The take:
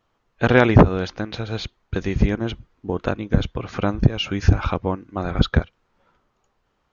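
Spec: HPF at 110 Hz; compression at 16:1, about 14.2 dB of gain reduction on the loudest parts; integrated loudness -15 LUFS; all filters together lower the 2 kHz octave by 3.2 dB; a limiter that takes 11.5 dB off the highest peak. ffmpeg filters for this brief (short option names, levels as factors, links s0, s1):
-af "highpass=110,equalizer=f=2000:t=o:g=-4.5,acompressor=threshold=0.0891:ratio=16,volume=8.41,alimiter=limit=0.891:level=0:latency=1"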